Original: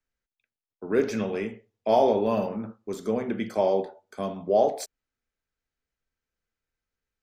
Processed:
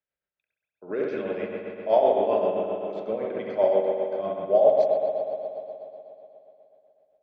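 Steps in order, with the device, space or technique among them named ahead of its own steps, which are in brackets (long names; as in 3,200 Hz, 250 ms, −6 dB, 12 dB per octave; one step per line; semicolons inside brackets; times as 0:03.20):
combo amplifier with spring reverb and tremolo (spring reverb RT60 3.1 s, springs 60 ms, chirp 65 ms, DRR −1.5 dB; amplitude tremolo 7.7 Hz, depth 49%; loudspeaker in its box 76–3,800 Hz, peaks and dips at 110 Hz −9 dB, 160 Hz +4 dB, 230 Hz −10 dB, 590 Hz +9 dB)
level −3.5 dB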